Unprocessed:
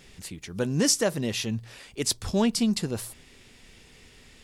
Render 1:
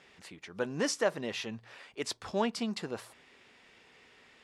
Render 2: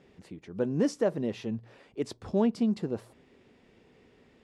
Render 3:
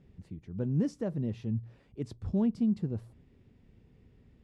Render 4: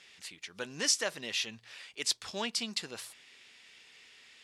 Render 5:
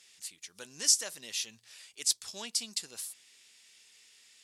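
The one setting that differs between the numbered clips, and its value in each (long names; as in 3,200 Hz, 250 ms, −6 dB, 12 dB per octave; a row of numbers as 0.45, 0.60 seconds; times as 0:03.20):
resonant band-pass, frequency: 1,100, 400, 110, 2,800, 7,500 Hertz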